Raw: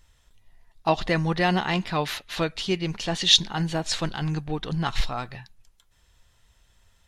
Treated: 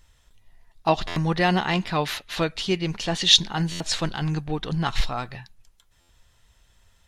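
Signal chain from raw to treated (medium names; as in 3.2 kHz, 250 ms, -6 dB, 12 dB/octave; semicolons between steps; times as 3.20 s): buffer glitch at 1.07/3.71/6.00 s, samples 512, times 7; trim +1.5 dB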